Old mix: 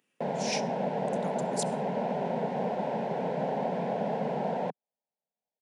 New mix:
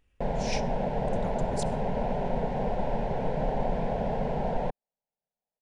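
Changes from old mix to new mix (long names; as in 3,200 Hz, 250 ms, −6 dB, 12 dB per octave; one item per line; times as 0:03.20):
speech: add high-shelf EQ 6,200 Hz −9 dB
master: remove Butterworth high-pass 160 Hz 36 dB per octave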